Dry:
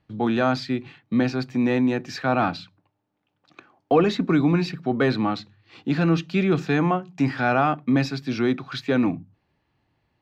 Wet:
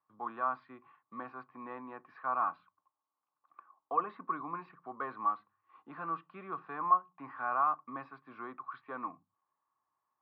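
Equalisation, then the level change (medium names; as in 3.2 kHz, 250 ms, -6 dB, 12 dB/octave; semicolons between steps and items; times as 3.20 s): band-pass filter 1.1 kHz, Q 13; distance through air 390 m; +6.5 dB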